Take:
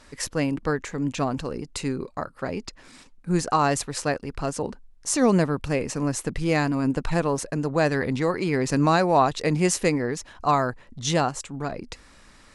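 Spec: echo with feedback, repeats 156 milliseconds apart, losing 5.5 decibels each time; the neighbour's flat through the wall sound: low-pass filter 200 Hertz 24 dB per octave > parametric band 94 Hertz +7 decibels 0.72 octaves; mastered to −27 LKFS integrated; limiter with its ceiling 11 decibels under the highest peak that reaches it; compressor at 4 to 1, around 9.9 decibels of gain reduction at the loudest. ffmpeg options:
ffmpeg -i in.wav -af "acompressor=threshold=-27dB:ratio=4,alimiter=limit=-24dB:level=0:latency=1,lowpass=frequency=200:width=0.5412,lowpass=frequency=200:width=1.3066,equalizer=frequency=94:width_type=o:width=0.72:gain=7,aecho=1:1:156|312|468|624|780|936|1092:0.531|0.281|0.149|0.079|0.0419|0.0222|0.0118,volume=12dB" out.wav

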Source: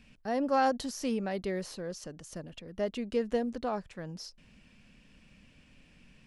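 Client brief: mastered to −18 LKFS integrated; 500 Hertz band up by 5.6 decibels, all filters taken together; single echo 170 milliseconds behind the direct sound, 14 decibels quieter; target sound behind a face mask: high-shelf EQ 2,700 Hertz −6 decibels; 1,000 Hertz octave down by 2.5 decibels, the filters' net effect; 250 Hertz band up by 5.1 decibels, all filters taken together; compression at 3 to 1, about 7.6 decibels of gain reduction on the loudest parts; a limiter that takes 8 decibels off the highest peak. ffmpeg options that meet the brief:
ffmpeg -i in.wav -af "equalizer=frequency=250:width_type=o:gain=4.5,equalizer=frequency=500:width_type=o:gain=7,equalizer=frequency=1000:width_type=o:gain=-7,acompressor=threshold=-29dB:ratio=3,alimiter=level_in=3dB:limit=-24dB:level=0:latency=1,volume=-3dB,highshelf=frequency=2700:gain=-6,aecho=1:1:170:0.2,volume=19dB" out.wav

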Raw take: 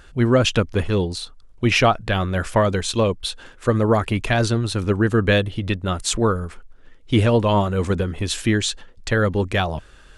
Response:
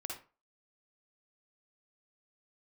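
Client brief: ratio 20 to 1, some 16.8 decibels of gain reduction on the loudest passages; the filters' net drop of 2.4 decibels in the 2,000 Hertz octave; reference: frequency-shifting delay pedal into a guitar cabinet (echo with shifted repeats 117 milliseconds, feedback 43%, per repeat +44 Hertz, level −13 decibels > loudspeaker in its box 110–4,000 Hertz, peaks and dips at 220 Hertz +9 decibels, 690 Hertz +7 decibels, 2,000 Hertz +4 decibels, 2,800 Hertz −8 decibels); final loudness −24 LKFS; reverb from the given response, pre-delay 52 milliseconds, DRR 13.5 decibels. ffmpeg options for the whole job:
-filter_complex "[0:a]equalizer=frequency=2000:width_type=o:gain=-3.5,acompressor=threshold=-29dB:ratio=20,asplit=2[link_01][link_02];[1:a]atrim=start_sample=2205,adelay=52[link_03];[link_02][link_03]afir=irnorm=-1:irlink=0,volume=-12.5dB[link_04];[link_01][link_04]amix=inputs=2:normalize=0,asplit=5[link_05][link_06][link_07][link_08][link_09];[link_06]adelay=117,afreqshift=44,volume=-13dB[link_10];[link_07]adelay=234,afreqshift=88,volume=-20.3dB[link_11];[link_08]adelay=351,afreqshift=132,volume=-27.7dB[link_12];[link_09]adelay=468,afreqshift=176,volume=-35dB[link_13];[link_05][link_10][link_11][link_12][link_13]amix=inputs=5:normalize=0,highpass=110,equalizer=frequency=220:width_type=q:width=4:gain=9,equalizer=frequency=690:width_type=q:width=4:gain=7,equalizer=frequency=2000:width_type=q:width=4:gain=4,equalizer=frequency=2800:width_type=q:width=4:gain=-8,lowpass=frequency=4000:width=0.5412,lowpass=frequency=4000:width=1.3066,volume=8.5dB"

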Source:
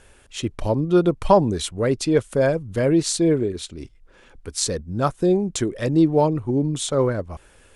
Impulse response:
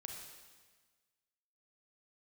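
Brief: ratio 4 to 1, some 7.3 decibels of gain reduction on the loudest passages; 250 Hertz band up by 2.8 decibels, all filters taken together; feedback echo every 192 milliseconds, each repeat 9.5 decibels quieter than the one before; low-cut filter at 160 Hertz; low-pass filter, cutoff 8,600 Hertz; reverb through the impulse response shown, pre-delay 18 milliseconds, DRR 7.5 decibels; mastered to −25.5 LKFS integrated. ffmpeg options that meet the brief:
-filter_complex "[0:a]highpass=160,lowpass=8600,equalizer=frequency=250:width_type=o:gain=5,acompressor=threshold=-18dB:ratio=4,aecho=1:1:192|384|576|768:0.335|0.111|0.0365|0.012,asplit=2[link_01][link_02];[1:a]atrim=start_sample=2205,adelay=18[link_03];[link_02][link_03]afir=irnorm=-1:irlink=0,volume=-4dB[link_04];[link_01][link_04]amix=inputs=2:normalize=0,volume=-2.5dB"

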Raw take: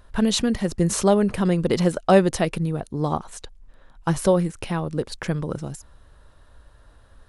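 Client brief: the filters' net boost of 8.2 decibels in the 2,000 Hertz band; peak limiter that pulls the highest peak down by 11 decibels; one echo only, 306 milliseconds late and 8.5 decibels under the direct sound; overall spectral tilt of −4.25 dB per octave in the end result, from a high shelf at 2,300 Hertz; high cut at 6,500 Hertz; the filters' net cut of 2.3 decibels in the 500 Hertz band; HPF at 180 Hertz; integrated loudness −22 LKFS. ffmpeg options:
ffmpeg -i in.wav -af "highpass=180,lowpass=6500,equalizer=frequency=500:width_type=o:gain=-3.5,equalizer=frequency=2000:width_type=o:gain=7.5,highshelf=frequency=2300:gain=6,alimiter=limit=-13dB:level=0:latency=1,aecho=1:1:306:0.376,volume=3.5dB" out.wav

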